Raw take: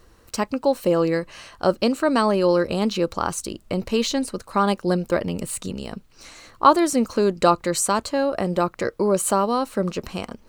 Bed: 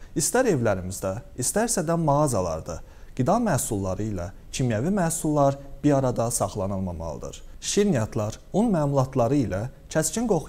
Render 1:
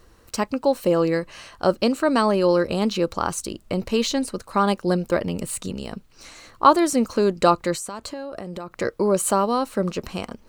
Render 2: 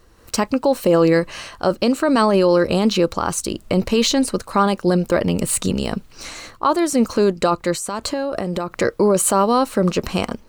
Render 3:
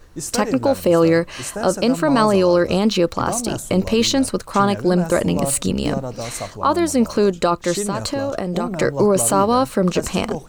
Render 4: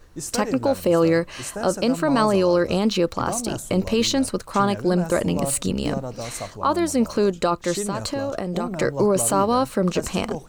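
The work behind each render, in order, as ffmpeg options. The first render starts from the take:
-filter_complex "[0:a]asettb=1/sr,asplit=3[a][b][c];[a]atrim=end=7.744[d];[b]atrim=start=7.74:end=8.73,asetpts=PTS-STARTPTS,afade=t=in:d=0.004:c=qsin,afade=t=out:st=0.986:d=0.004:c=qsin,acompressor=threshold=-28dB:ratio=16:attack=3.2:release=140:knee=1:detection=peak[e];[c]atrim=start=8.726[f];[d][e]acrossfade=d=0.004:c1=hsin:c2=qsin[g];[g][f]acrossfade=d=0.004:c1=qsin:c2=hsin"
-af "dynaudnorm=f=150:g=3:m=10dB,alimiter=limit=-7dB:level=0:latency=1:release=19"
-filter_complex "[1:a]volume=-4.5dB[a];[0:a][a]amix=inputs=2:normalize=0"
-af "volume=-3.5dB"

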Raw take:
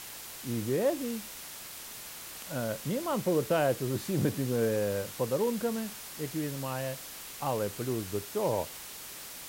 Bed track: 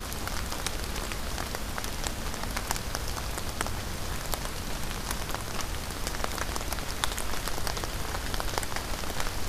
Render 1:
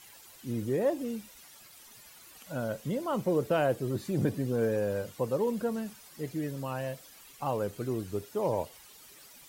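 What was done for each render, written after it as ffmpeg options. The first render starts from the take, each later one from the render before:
-af "afftdn=nr=13:nf=-44"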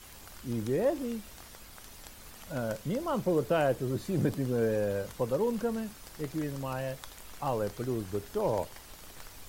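-filter_complex "[1:a]volume=-18.5dB[a];[0:a][a]amix=inputs=2:normalize=0"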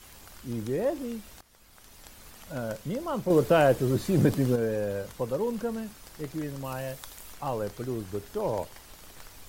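-filter_complex "[0:a]asettb=1/sr,asplit=3[a][b][c];[a]atrim=end=3.304[d];[b]atrim=start=3.3:end=4.56,asetpts=PTS-STARTPTS,afade=t=in:d=0.004:c=qsin,afade=t=out:st=1.256:d=0.004:c=qsin,acontrast=63[e];[c]atrim=start=4.556[f];[d][e]acrossfade=d=0.004:c1=hsin:c2=qsin[g];[g][f]acrossfade=d=0.004:c1=qsin:c2=hsin,asettb=1/sr,asplit=3[h][i][j];[h]atrim=end=6.644[k];[i]atrim=start=6.64:end=7.34,asetpts=PTS-STARTPTS,afade=t=in:d=0.004:c=qsin,afade=t=out:st=0.696:d=0.004:c=qsin,highshelf=f=6.3k:g=6.5[l];[j]atrim=start=7.336[m];[k][l]acrossfade=d=0.004:c1=hsin:c2=qsin[n];[n][m]acrossfade=d=0.004:c1=qsin:c2=hsin,asplit=2[o][p];[o]atrim=end=1.41,asetpts=PTS-STARTPTS,afade=t=out:st=1.406:d=0.004:c=hsin:silence=0.16788[q];[p]atrim=start=1.41,asetpts=PTS-STARTPTS,afade=t=in:d=0.75:silence=0.16788[r];[q][r]concat=n=2:v=0:a=1"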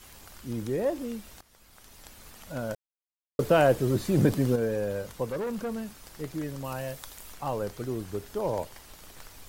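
-filter_complex "[0:a]asettb=1/sr,asplit=3[a][b][c];[a]atrim=end=5.294[d];[b]atrim=start=5.29:end=5.88,asetpts=PTS-STARTPTS,afade=t=in:d=0.004:c=qsin,afade=t=out:st=0.586:d=0.004:c=qsin,asoftclip=type=hard:threshold=-28.5dB[e];[c]atrim=start=5.876[f];[d][e]acrossfade=d=0.004:c1=hsin:c2=qsin[g];[g][f]acrossfade=d=0.004:c1=qsin:c2=hsin,asplit=3[h][i][j];[h]atrim=end=2.75,asetpts=PTS-STARTPTS,afade=t=out:st=2.746:d=0.004:c=hsin[k];[i]atrim=start=2.75:end=3.39,asetpts=PTS-STARTPTS,volume=0[l];[j]atrim=start=3.39,asetpts=PTS-STARTPTS,afade=t=in:d=0.004:c=hsin[m];[k][l][m]concat=n=3:v=0:a=1"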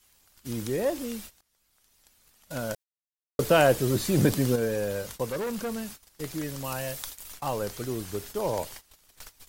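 -af "agate=range=-19dB:threshold=-44dB:ratio=16:detection=peak,highshelf=f=2.1k:g=9"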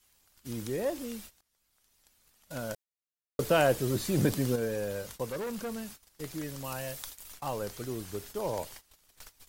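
-af "volume=-4.5dB"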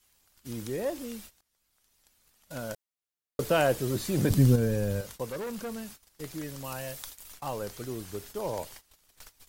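-filter_complex "[0:a]asettb=1/sr,asplit=3[a][b][c];[a]atrim=end=4.304[d];[b]atrim=start=4.3:end=5.01,asetpts=PTS-STARTPTS,afade=t=in:d=0.004:c=qsin,afade=t=out:st=0.706:d=0.004:c=qsin,bass=f=250:g=14,treble=f=4k:g=2[e];[c]atrim=start=5.006[f];[d][e]acrossfade=d=0.004:c1=hsin:c2=qsin[g];[g][f]acrossfade=d=0.004:c1=qsin:c2=hsin"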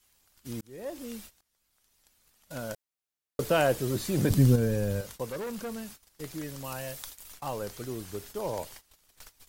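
-filter_complex "[0:a]asplit=2[a][b];[a]atrim=end=0.61,asetpts=PTS-STARTPTS,afade=t=out:st=0.606:d=0.004:c=hsin[c];[b]atrim=start=0.61,asetpts=PTS-STARTPTS,afade=t=in:d=0.54[d];[c][d]concat=n=2:v=0:a=1"

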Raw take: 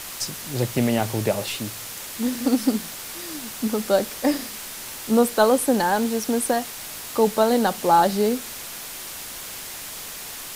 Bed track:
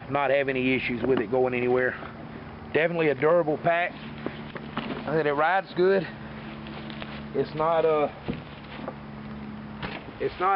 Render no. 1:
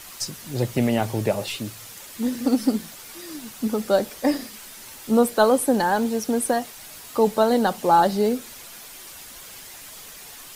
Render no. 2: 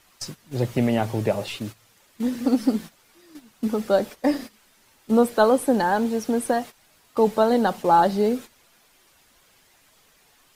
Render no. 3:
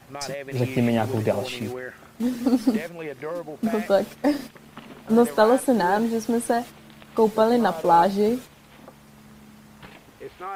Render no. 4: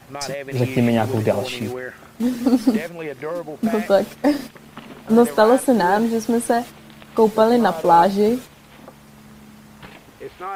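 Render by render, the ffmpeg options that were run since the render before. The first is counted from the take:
-af "afftdn=nr=8:nf=-36"
-af "agate=range=-13dB:threshold=-33dB:ratio=16:detection=peak,highshelf=f=4.9k:g=-8.5"
-filter_complex "[1:a]volume=-10.5dB[a];[0:a][a]amix=inputs=2:normalize=0"
-af "volume=4dB,alimiter=limit=-2dB:level=0:latency=1"

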